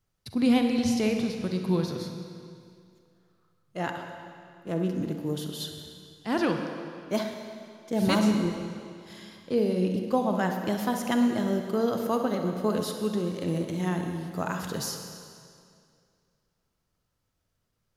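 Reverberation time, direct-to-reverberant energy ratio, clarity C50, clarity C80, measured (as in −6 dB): 2.3 s, 4.0 dB, 4.5 dB, 6.0 dB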